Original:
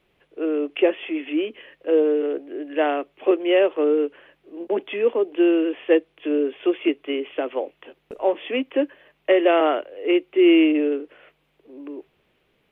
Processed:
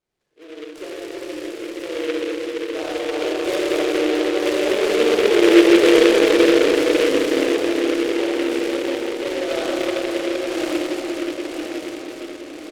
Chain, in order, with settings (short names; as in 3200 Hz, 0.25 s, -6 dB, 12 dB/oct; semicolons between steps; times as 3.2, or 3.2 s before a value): regenerating reverse delay 0.505 s, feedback 71%, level -2 dB; Doppler pass-by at 5.84, 5 m/s, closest 5.1 m; feedback echo 0.47 s, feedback 56%, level -7 dB; Schroeder reverb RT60 3.3 s, combs from 26 ms, DRR -7.5 dB; noise-modulated delay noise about 2100 Hz, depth 0.1 ms; gain -4.5 dB